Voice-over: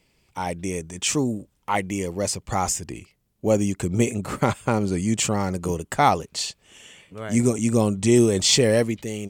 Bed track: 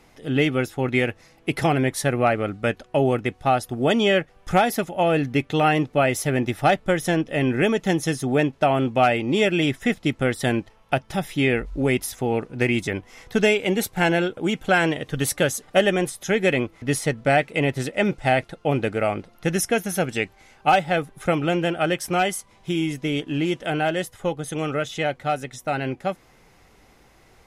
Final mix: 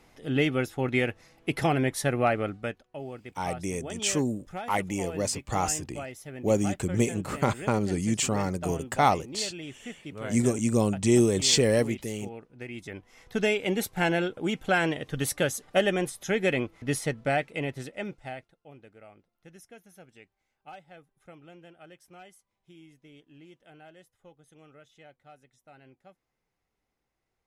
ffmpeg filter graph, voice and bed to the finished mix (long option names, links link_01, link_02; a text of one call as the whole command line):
ffmpeg -i stem1.wav -i stem2.wav -filter_complex "[0:a]adelay=3000,volume=-4dB[link_01];[1:a]volume=9dB,afade=type=out:start_time=2.44:duration=0.39:silence=0.188365,afade=type=in:start_time=12.69:duration=0.97:silence=0.211349,afade=type=out:start_time=16.94:duration=1.61:silence=0.0707946[link_02];[link_01][link_02]amix=inputs=2:normalize=0" out.wav